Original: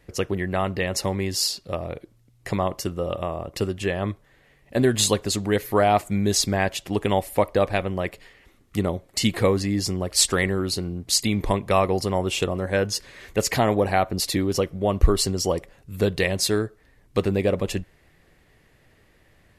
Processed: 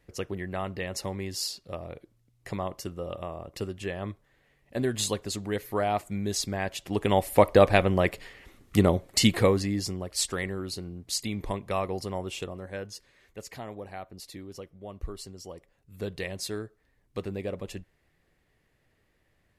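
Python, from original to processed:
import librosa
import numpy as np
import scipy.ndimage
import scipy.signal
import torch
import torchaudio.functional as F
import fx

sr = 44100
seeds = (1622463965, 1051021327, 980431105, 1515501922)

y = fx.gain(x, sr, db=fx.line((6.61, -8.5), (7.49, 3.0), (9.06, 3.0), (10.12, -9.5), (12.16, -9.5), (13.39, -19.5), (15.54, -19.5), (16.1, -12.0)))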